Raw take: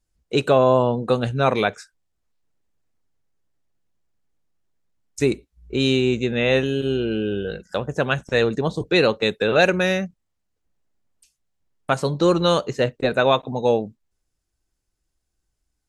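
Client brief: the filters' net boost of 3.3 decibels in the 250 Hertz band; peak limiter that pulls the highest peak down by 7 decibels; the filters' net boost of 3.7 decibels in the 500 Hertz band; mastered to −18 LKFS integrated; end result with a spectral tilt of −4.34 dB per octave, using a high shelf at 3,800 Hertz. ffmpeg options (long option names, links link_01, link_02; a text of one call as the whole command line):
ffmpeg -i in.wav -af "equalizer=frequency=250:width_type=o:gain=3,equalizer=frequency=500:width_type=o:gain=3.5,highshelf=frequency=3800:gain=7,volume=2dB,alimiter=limit=-6dB:level=0:latency=1" out.wav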